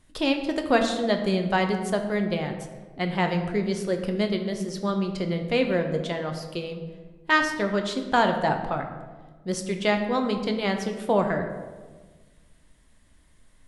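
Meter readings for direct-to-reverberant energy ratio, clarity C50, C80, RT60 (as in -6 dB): 4.5 dB, 7.5 dB, 9.0 dB, 1.4 s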